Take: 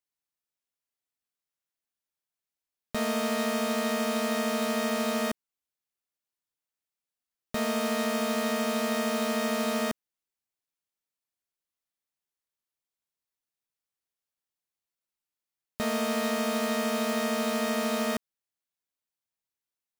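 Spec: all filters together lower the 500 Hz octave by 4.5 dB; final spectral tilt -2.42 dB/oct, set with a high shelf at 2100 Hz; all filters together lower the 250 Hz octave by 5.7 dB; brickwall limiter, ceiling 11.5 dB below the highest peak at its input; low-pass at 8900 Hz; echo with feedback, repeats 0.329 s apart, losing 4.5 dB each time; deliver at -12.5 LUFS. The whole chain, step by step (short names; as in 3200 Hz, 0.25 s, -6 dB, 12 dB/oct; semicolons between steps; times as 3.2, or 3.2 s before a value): LPF 8900 Hz; bell 250 Hz -5.5 dB; bell 500 Hz -4.5 dB; high shelf 2100 Hz -4 dB; limiter -32.5 dBFS; feedback echo 0.329 s, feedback 60%, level -4.5 dB; gain +29 dB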